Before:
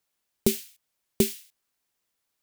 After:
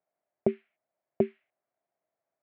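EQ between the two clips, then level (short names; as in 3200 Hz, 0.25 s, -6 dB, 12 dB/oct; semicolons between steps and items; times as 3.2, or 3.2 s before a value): air absorption 430 m; speaker cabinet 120–2200 Hz, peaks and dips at 130 Hz +4 dB, 360 Hz +4 dB, 610 Hz +6 dB, 2200 Hz +3 dB; bell 670 Hz +14 dB 0.52 oct; -5.0 dB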